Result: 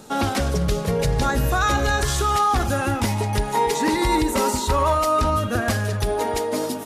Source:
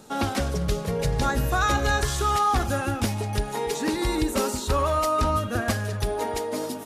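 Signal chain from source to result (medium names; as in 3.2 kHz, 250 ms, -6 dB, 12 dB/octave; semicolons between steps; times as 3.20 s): peak limiter -17 dBFS, peak gain reduction 4 dB; 2.85–4.95 s: small resonant body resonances 950/2000 Hz, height 11 dB; trim +5 dB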